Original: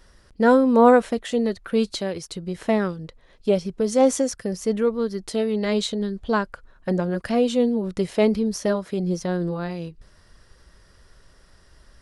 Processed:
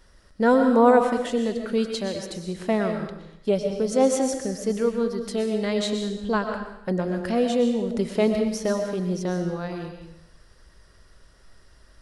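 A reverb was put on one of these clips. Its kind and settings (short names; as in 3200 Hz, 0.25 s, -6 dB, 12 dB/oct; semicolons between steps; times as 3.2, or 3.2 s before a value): digital reverb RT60 0.82 s, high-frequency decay 1×, pre-delay 80 ms, DRR 4.5 dB; gain -2.5 dB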